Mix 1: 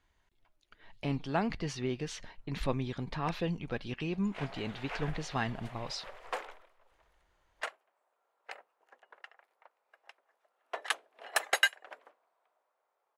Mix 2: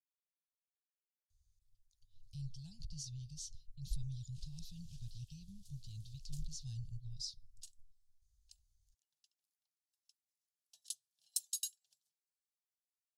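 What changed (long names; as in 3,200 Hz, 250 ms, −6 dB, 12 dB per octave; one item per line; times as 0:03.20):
speech: entry +1.30 s
master: add inverse Chebyshev band-stop filter 270–2,200 Hz, stop band 50 dB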